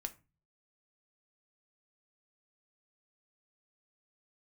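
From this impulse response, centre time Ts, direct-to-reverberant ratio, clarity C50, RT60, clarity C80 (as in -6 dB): 5 ms, 6.5 dB, 18.5 dB, 0.30 s, 24.0 dB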